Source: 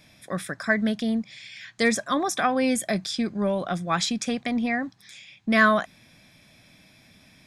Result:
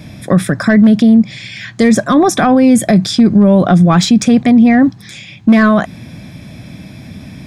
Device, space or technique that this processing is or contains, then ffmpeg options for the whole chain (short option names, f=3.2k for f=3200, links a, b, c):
mastering chain: -af "highpass=55,equalizer=f=480:t=o:w=1.8:g=-3,acompressor=threshold=-28dB:ratio=1.5,asoftclip=type=tanh:threshold=-16.5dB,tiltshelf=f=710:g=8.5,asoftclip=type=hard:threshold=-16.5dB,alimiter=level_in=22dB:limit=-1dB:release=50:level=0:latency=1,volume=-1dB"